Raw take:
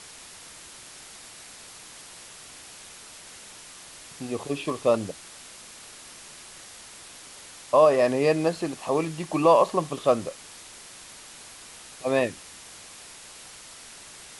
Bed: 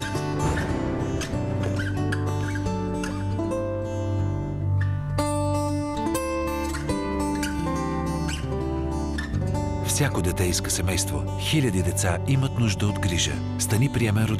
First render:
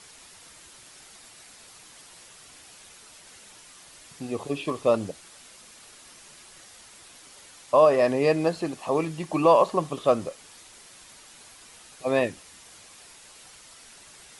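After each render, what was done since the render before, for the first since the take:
broadband denoise 6 dB, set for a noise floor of −46 dBFS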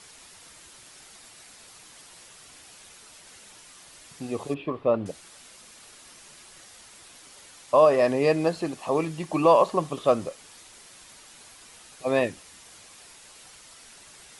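0:04.54–0:05.06: high-frequency loss of the air 440 metres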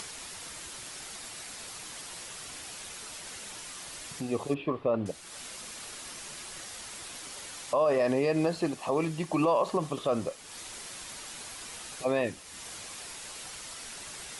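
brickwall limiter −17.5 dBFS, peak gain reduction 11 dB
upward compression, threshold −34 dBFS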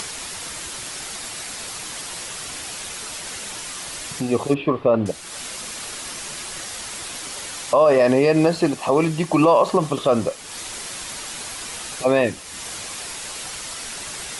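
level +10.5 dB

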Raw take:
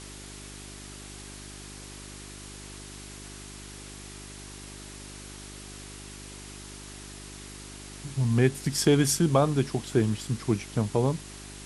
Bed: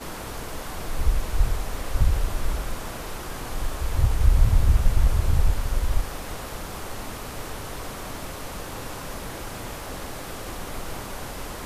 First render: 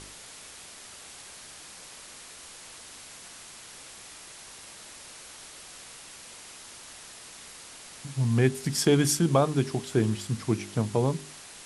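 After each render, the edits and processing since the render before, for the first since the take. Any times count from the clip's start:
hum removal 50 Hz, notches 8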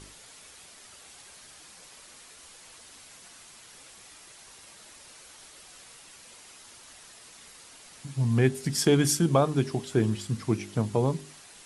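broadband denoise 6 dB, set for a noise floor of −47 dBFS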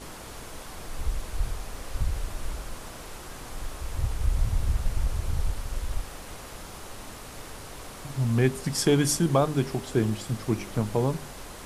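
mix in bed −7.5 dB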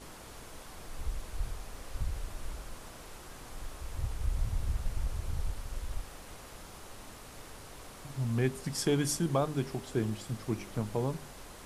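level −7 dB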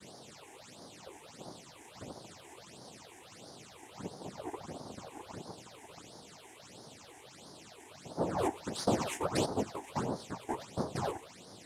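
cochlear-implant simulation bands 2
all-pass phaser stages 8, 1.5 Hz, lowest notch 160–2,600 Hz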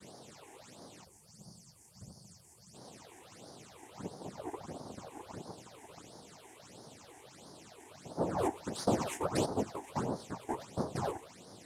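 0:01.04–0:02.75: gain on a spectral selection 220–4,300 Hz −15 dB
parametric band 3,200 Hz −4 dB 1.8 octaves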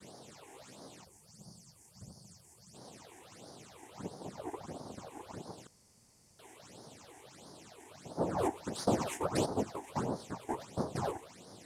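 0:00.48–0:00.95: double-tracking delay 15 ms −7 dB
0:05.67–0:06.39: fill with room tone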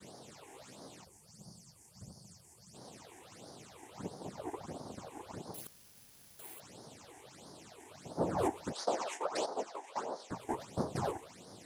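0:05.54–0:06.60: bad sample-rate conversion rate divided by 4×, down none, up zero stuff
0:08.72–0:10.31: Chebyshev band-pass filter 560–6,500 Hz

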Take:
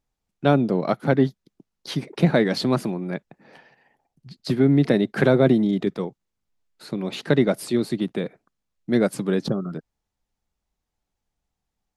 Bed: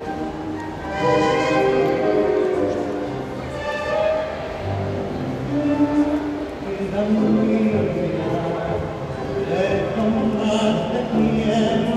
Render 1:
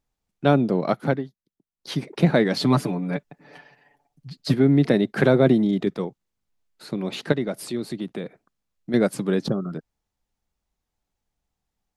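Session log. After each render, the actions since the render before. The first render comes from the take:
0:01.06–0:01.93: duck −16 dB, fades 0.17 s
0:02.60–0:04.54: comb filter 6.9 ms, depth 87%
0:07.32–0:08.94: downward compressor 1.5 to 1, threshold −34 dBFS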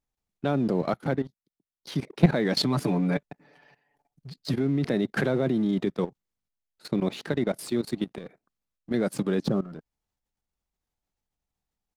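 output level in coarse steps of 14 dB
leveller curve on the samples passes 1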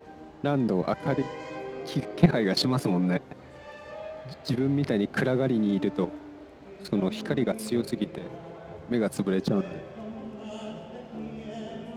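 mix in bed −19.5 dB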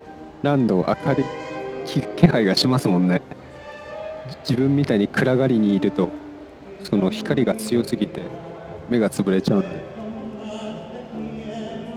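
level +7 dB
brickwall limiter −1 dBFS, peak gain reduction 1.5 dB

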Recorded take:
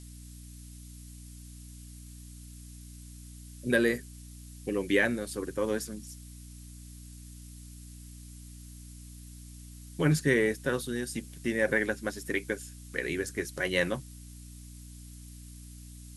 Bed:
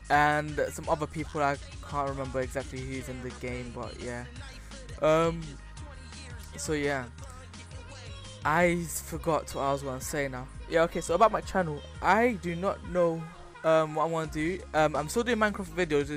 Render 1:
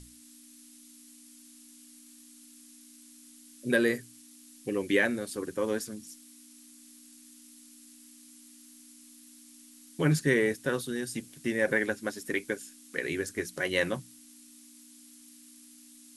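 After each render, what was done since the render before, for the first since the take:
mains-hum notches 60/120/180 Hz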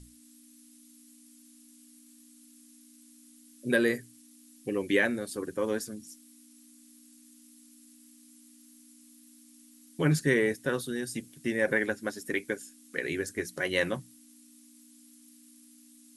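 broadband denoise 6 dB, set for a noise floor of −54 dBFS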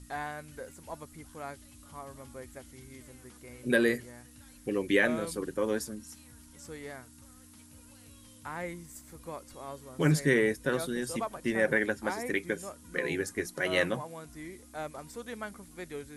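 mix in bed −14 dB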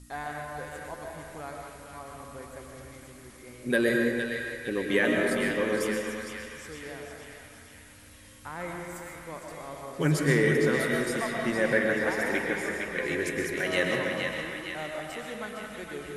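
feedback echo with a band-pass in the loop 460 ms, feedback 63%, band-pass 2,800 Hz, level −3.5 dB
comb and all-pass reverb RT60 1.9 s, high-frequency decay 0.5×, pre-delay 85 ms, DRR 0.5 dB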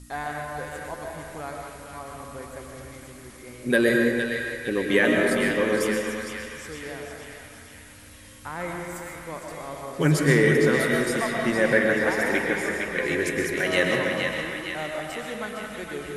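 level +4.5 dB

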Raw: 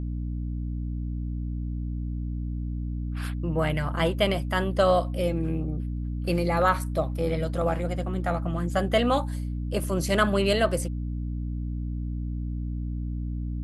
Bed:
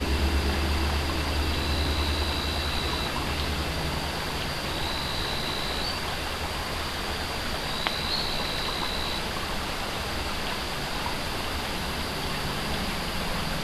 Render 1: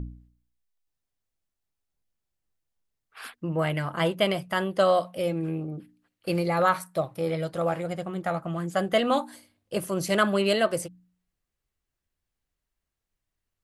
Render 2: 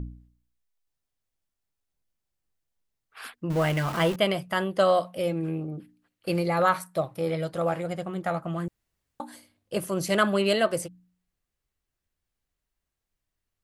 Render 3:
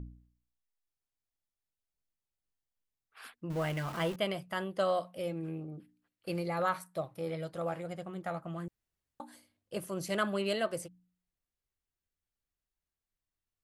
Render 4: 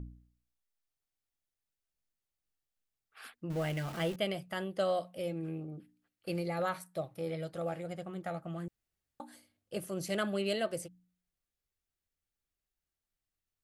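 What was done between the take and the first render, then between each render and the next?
hum removal 60 Hz, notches 5
0:03.50–0:04.16: converter with a step at zero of −30.5 dBFS; 0:08.68–0:09.20: fill with room tone
level −9 dB
notch filter 1,000 Hz, Q 8.7; dynamic equaliser 1,200 Hz, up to −5 dB, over −48 dBFS, Q 1.5

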